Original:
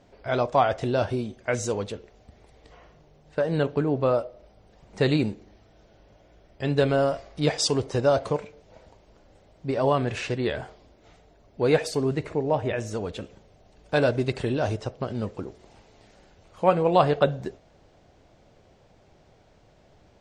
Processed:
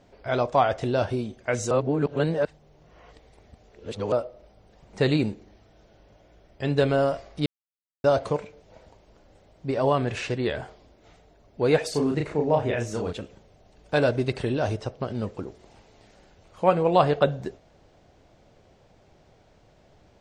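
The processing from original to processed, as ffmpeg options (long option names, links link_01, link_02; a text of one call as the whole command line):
ffmpeg -i in.wav -filter_complex "[0:a]asettb=1/sr,asplit=3[link_01][link_02][link_03];[link_01]atrim=end=11.914[link_04];[link_02]atrim=start=11.91:end=13.13,asetpts=PTS-STARTPTS,afade=type=in:duration=0.004:curve=qsin,afade=type=out:start_time=1.216:duration=0.004:curve=qsin,asplit=2[link_05][link_06];[link_06]adelay=34,volume=-3dB[link_07];[link_05][link_07]amix=inputs=2:normalize=0,atrim=end_sample=53802[link_08];[link_03]atrim=start=13.126[link_09];[link_04][link_08]acrossfade=duration=0.004:curve1=hsin:curve2=qsin[link_10];[link_10][link_09]acrossfade=duration=0.004:curve1=qsin:curve2=hsin,asettb=1/sr,asplit=3[link_11][link_12][link_13];[link_11]atrim=end=14.114[link_14];[link_12]atrim=start=14.11:end=15.24,asetpts=PTS-STARTPTS,afade=type=in:duration=0.004:curve=qsin,afade=type=out:start_time=1.126:duration=0.004:curve=qsin,bandreject=frequency=7100:width=12[link_15];[link_13]atrim=start=15.236[link_16];[link_14][link_15]acrossfade=duration=0.004:curve1=hsin:curve2=qsin[link_17];[link_17][link_16]acrossfade=duration=0.004:curve1=qsin:curve2=hsin,asplit=5[link_18][link_19][link_20][link_21][link_22];[link_18]atrim=end=1.712[link_23];[link_19]atrim=start=1.708:end=4.122,asetpts=PTS-STARTPTS,areverse[link_24];[link_20]atrim=start=4.118:end=7.46,asetpts=PTS-STARTPTS,afade=type=out:start_time=3.338:duration=0.004:curve=hsin[link_25];[link_21]atrim=start=7.46:end=8.04,asetpts=PTS-STARTPTS,volume=0[link_26];[link_22]atrim=start=8.04,asetpts=PTS-STARTPTS,afade=type=in:duration=0.004:curve=hsin[link_27];[link_23][link_24]acrossfade=duration=0.004:curve1=hsin:curve2=hsin[link_28];[link_25][link_26][link_27]concat=n=3:v=0:a=1[link_29];[link_28][link_29]acrossfade=duration=0.004:curve1=hsin:curve2=hsin" out.wav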